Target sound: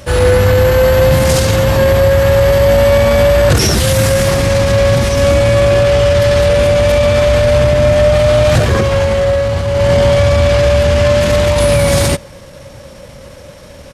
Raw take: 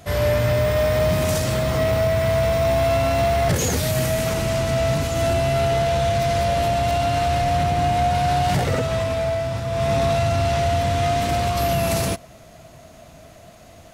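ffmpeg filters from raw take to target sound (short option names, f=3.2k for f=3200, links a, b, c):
-af "bandreject=f=500:w=12,acontrast=76,asetrate=37084,aresample=44100,atempo=1.18921,volume=4dB"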